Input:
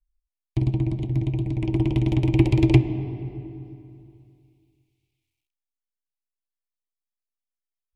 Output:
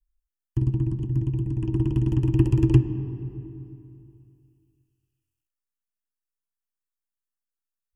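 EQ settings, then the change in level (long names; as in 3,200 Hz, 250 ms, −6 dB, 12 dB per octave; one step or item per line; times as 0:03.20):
Butterworth band-reject 2,200 Hz, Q 2.8
phaser with its sweep stopped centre 1,600 Hz, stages 4
0.0 dB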